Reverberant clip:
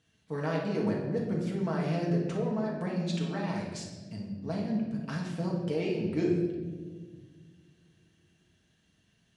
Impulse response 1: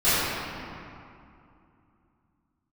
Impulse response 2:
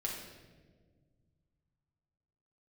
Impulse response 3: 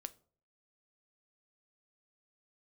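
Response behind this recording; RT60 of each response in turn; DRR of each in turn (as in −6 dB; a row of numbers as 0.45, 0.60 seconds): 2; 2.6, 1.6, 0.50 seconds; −21.0, −3.0, 11.5 decibels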